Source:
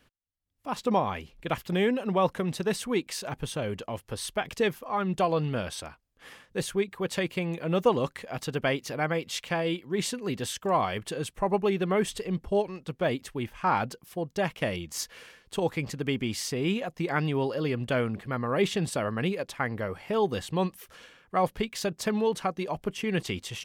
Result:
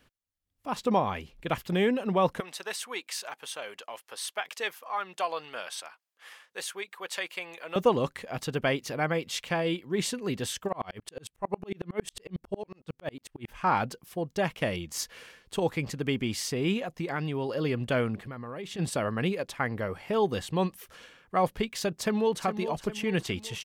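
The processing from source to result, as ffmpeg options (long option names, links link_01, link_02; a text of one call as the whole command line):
ffmpeg -i in.wav -filter_complex "[0:a]asettb=1/sr,asplit=3[link_01][link_02][link_03];[link_01]atrim=end=2.404[link_04];[link_02]atrim=start=2.4:end=7.76,asetpts=PTS-STARTPTS,afade=type=in:duration=0.004:curve=qsin,afade=type=out:start_time=5.356:duration=0.004:curve=qsin,highpass=830[link_05];[link_03]atrim=start=7.756[link_06];[link_04][link_05]acrossfade=duration=0.004:curve1=hsin:curve2=qsin[link_07];[link_07][link_06]acrossfade=duration=0.004:curve1=qsin:curve2=hsin,asplit=3[link_08][link_09][link_10];[link_08]afade=type=out:start_time=10.67:duration=0.02[link_11];[link_09]aeval=exprs='val(0)*pow(10,-37*if(lt(mod(-11*n/s,1),2*abs(-11)/1000),1-mod(-11*n/s,1)/(2*abs(-11)/1000),(mod(-11*n/s,1)-2*abs(-11)/1000)/(1-2*abs(-11)/1000))/20)':channel_layout=same,afade=type=in:start_time=10.67:duration=0.02,afade=type=out:start_time=13.48:duration=0.02[link_12];[link_10]afade=type=in:start_time=13.48:duration=0.02[link_13];[link_11][link_12][link_13]amix=inputs=3:normalize=0,asettb=1/sr,asplit=3[link_14][link_15][link_16];[link_14]atrim=end=16.804[link_17];[link_15]atrim=start=16.8:end=17.49,asetpts=PTS-STARTPTS,afade=type=in:duration=0.004:curve=qsin,afade=type=out:start_time=0.686:duration=0.004:curve=qsin,acompressor=threshold=-30dB:ratio=2:attack=3.2:release=140:knee=1:detection=peak[link_18];[link_16]atrim=start=17.486[link_19];[link_17][link_18]acrossfade=duration=0.004:curve1=hsin:curve2=qsin[link_20];[link_20][link_19]acrossfade=duration=0.004:curve1=qsin:curve2=hsin,asplit=3[link_21][link_22][link_23];[link_21]afade=type=out:start_time=18.15:duration=0.02[link_24];[link_22]acompressor=threshold=-36dB:ratio=6:attack=3.2:release=140:knee=1:detection=peak,afade=type=in:start_time=18.15:duration=0.02,afade=type=out:start_time=18.78:duration=0.02[link_25];[link_23]afade=type=in:start_time=18.78:duration=0.02[link_26];[link_24][link_25][link_26]amix=inputs=3:normalize=0,asplit=2[link_27][link_28];[link_28]afade=type=in:start_time=21.94:duration=0.01,afade=type=out:start_time=22.44:duration=0.01,aecho=0:1:410|820|1230|1640|2050:0.316228|0.158114|0.0790569|0.0395285|0.0197642[link_29];[link_27][link_29]amix=inputs=2:normalize=0" out.wav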